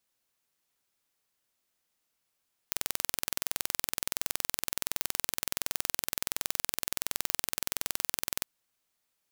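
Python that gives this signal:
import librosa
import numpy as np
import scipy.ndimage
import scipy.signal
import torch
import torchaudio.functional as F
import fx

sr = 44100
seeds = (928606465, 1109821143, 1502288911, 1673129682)

y = 10.0 ** (-2.0 / 20.0) * (np.mod(np.arange(round(5.74 * sr)), round(sr / 21.4)) == 0)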